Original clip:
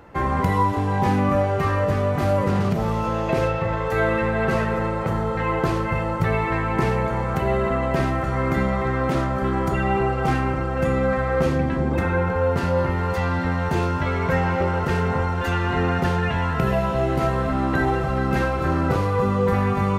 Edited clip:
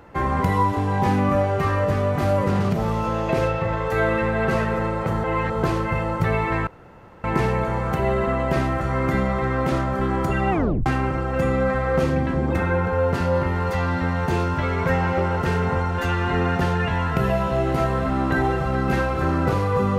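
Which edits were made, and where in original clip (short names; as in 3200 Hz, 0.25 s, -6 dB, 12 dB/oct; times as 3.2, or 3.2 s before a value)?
5.24–5.63 reverse
6.67 insert room tone 0.57 s
9.94 tape stop 0.35 s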